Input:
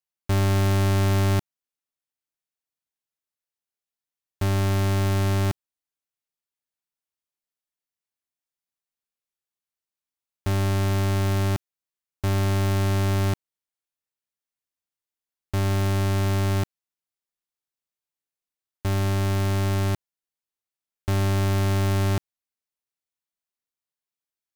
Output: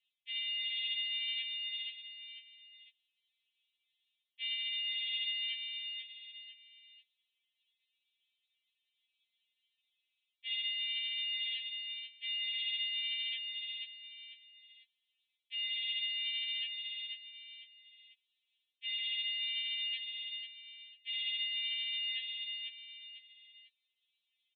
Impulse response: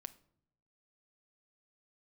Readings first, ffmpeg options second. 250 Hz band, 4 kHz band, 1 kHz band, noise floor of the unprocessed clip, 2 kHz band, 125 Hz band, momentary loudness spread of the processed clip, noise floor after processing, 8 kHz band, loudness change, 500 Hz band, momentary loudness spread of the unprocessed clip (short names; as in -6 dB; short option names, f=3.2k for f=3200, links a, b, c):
under -40 dB, +6.5 dB, under -40 dB, under -85 dBFS, -3.5 dB, under -40 dB, 15 LU, under -85 dBFS, under -40 dB, -11.5 dB, under -40 dB, 8 LU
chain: -af "asuperpass=centerf=3100:order=20:qfactor=0.9,aecho=1:1:496|992|1488:0.0841|0.032|0.0121,areverse,acompressor=threshold=-49dB:ratio=5,areverse,aresample=8000,aresample=44100,flanger=delay=8.7:depth=2.2:regen=-37:speed=0.93:shape=sinusoidal,alimiter=level_in=25.5dB:limit=-24dB:level=0:latency=1:release=18,volume=-25.5dB,aexciter=amount=11.1:drive=5.4:freq=2.3k,afftfilt=real='re*3.46*eq(mod(b,12),0)':imag='im*3.46*eq(mod(b,12),0)':win_size=2048:overlap=0.75,volume=6.5dB"